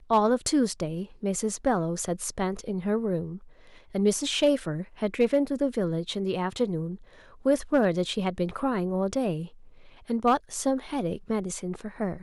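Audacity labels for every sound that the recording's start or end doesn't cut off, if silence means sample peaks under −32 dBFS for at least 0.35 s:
3.950000	6.950000	sound
7.460000	9.450000	sound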